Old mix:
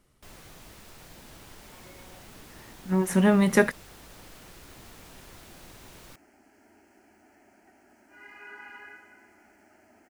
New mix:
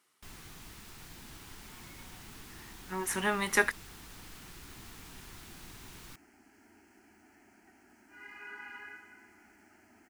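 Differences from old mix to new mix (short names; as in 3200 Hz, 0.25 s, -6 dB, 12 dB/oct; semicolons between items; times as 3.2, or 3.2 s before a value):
speech: add HPF 530 Hz 12 dB/oct; master: add bell 570 Hz -12 dB 0.65 oct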